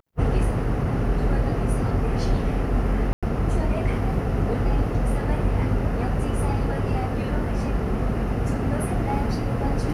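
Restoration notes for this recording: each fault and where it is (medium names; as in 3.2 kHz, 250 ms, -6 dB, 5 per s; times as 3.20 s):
3.13–3.23 s: dropout 96 ms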